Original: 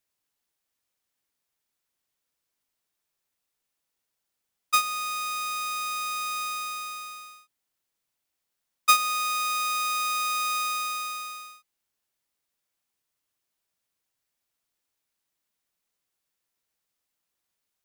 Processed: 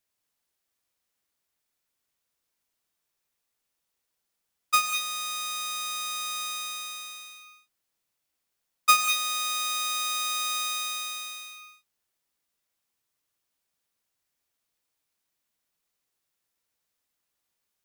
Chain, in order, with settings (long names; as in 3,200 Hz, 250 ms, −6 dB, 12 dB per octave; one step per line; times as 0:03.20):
reverb whose tail is shaped and stops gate 230 ms rising, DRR 6 dB